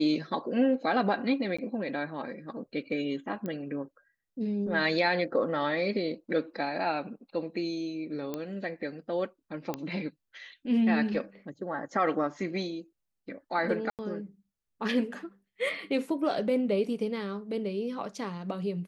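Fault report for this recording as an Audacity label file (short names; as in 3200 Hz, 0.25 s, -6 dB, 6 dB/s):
1.570000	1.580000	gap 15 ms
3.460000	3.460000	pop -23 dBFS
8.340000	8.340000	pop -20 dBFS
9.740000	9.740000	pop -18 dBFS
13.900000	13.990000	gap 88 ms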